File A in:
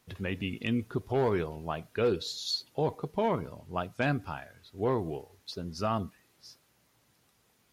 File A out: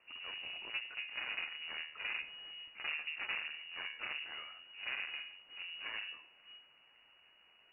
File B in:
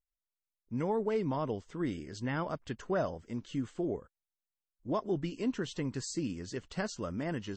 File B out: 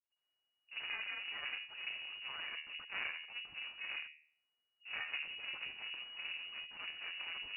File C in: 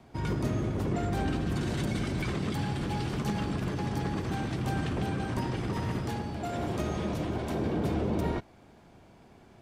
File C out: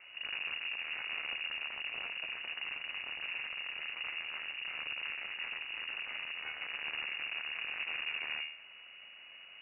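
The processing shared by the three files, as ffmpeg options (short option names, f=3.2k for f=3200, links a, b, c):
-af "aeval=exprs='max(val(0),0)':c=same,bandreject=f=76.87:t=h:w=4,bandreject=f=153.74:t=h:w=4,bandreject=f=230.61:t=h:w=4,bandreject=f=307.48:t=h:w=4,bandreject=f=384.35:t=h:w=4,bandreject=f=461.22:t=h:w=4,bandreject=f=538.09:t=h:w=4,bandreject=f=614.96:t=h:w=4,bandreject=f=691.83:t=h:w=4,bandreject=f=768.7:t=h:w=4,bandreject=f=845.57:t=h:w=4,bandreject=f=922.44:t=h:w=4,bandreject=f=999.31:t=h:w=4,bandreject=f=1.07618k:t=h:w=4,bandreject=f=1.15305k:t=h:w=4,bandreject=f=1.22992k:t=h:w=4,acontrast=62,aeval=exprs='(tanh(100*val(0)+0.8)-tanh(0.8))/100':c=same,lowpass=f=2.5k:t=q:w=0.5098,lowpass=f=2.5k:t=q:w=0.6013,lowpass=f=2.5k:t=q:w=0.9,lowpass=f=2.5k:t=q:w=2.563,afreqshift=-2900,volume=7dB"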